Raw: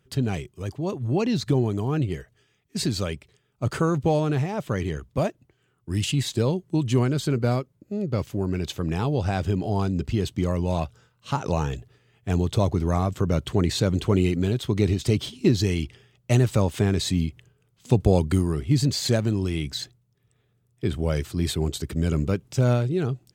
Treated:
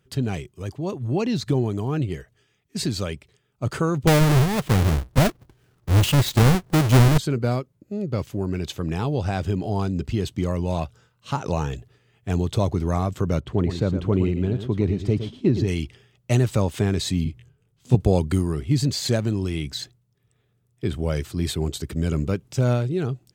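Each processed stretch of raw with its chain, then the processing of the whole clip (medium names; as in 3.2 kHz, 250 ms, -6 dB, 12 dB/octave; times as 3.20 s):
4.07–7.18 s: square wave that keeps the level + bass shelf 82 Hz +11 dB
13.40–15.68 s: low-pass 1.2 kHz 6 dB/octave + delay 113 ms -9.5 dB
17.24–17.95 s: bass shelf 230 Hz +8.5 dB + detune thickener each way 41 cents
whole clip: none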